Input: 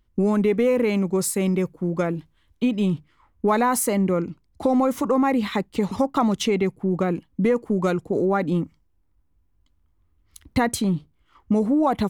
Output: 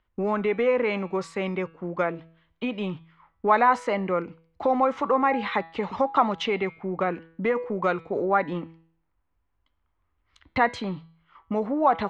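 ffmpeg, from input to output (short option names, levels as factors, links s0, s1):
-filter_complex "[0:a]lowpass=f=6800:w=0.5412,lowpass=f=6800:w=1.3066,acrossover=split=550 3100:gain=0.2 1 0.0891[s0][s1][s2];[s0][s1][s2]amix=inputs=3:normalize=0,bandreject=f=163.8:t=h:w=4,bandreject=f=327.6:t=h:w=4,bandreject=f=491.4:t=h:w=4,bandreject=f=655.2:t=h:w=4,bandreject=f=819:t=h:w=4,bandreject=f=982.8:t=h:w=4,bandreject=f=1146.6:t=h:w=4,bandreject=f=1310.4:t=h:w=4,bandreject=f=1474.2:t=h:w=4,bandreject=f=1638:t=h:w=4,bandreject=f=1801.8:t=h:w=4,bandreject=f=1965.6:t=h:w=4,bandreject=f=2129.4:t=h:w=4,bandreject=f=2293.2:t=h:w=4,bandreject=f=2457:t=h:w=4,bandreject=f=2620.8:t=h:w=4,bandreject=f=2784.6:t=h:w=4,bandreject=f=2948.4:t=h:w=4,bandreject=f=3112.2:t=h:w=4,bandreject=f=3276:t=h:w=4,bandreject=f=3439.8:t=h:w=4,bandreject=f=3603.6:t=h:w=4,bandreject=f=3767.4:t=h:w=4,bandreject=f=3931.2:t=h:w=4,bandreject=f=4095:t=h:w=4,bandreject=f=4258.8:t=h:w=4,bandreject=f=4422.6:t=h:w=4,bandreject=f=4586.4:t=h:w=4,bandreject=f=4750.2:t=h:w=4,volume=1.58"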